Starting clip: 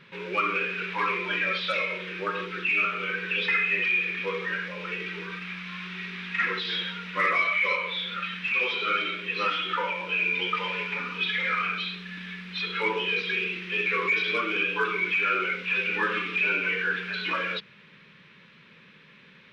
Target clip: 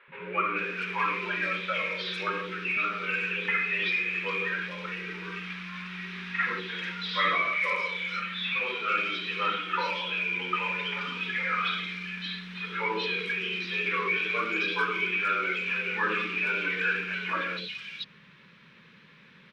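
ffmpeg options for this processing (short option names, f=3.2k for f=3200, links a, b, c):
-filter_complex "[0:a]acrossover=split=450|2700[a][b][c];[a]adelay=80[d];[c]adelay=440[e];[d][b][e]amix=inputs=3:normalize=0"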